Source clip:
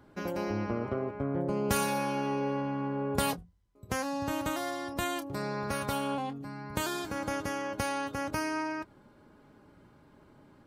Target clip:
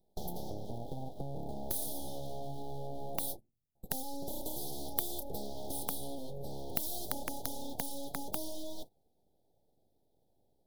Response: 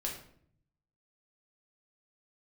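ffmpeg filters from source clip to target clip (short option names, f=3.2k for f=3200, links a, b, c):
-af "aeval=exprs='abs(val(0))':c=same,asuperstop=centerf=1700:order=20:qfactor=0.69,acompressor=threshold=-40dB:ratio=20,agate=range=-20dB:threshold=-48dB:ratio=16:detection=peak,aeval=exprs='(mod(37.6*val(0)+1,2)-1)/37.6':c=same,aexciter=amount=3.6:drive=5.9:freq=10k,volume=6dB"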